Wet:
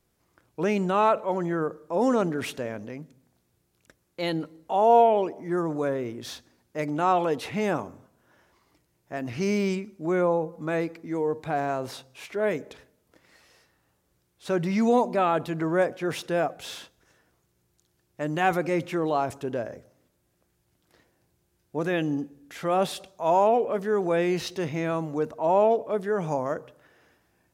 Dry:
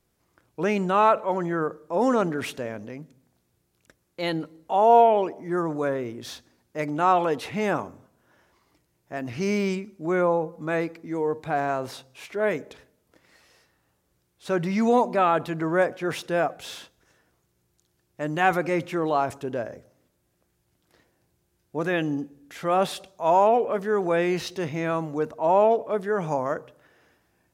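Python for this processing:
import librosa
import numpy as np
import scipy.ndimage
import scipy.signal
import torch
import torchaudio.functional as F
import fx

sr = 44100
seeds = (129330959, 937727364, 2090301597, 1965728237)

y = fx.dynamic_eq(x, sr, hz=1400.0, q=0.7, threshold_db=-33.0, ratio=4.0, max_db=-4)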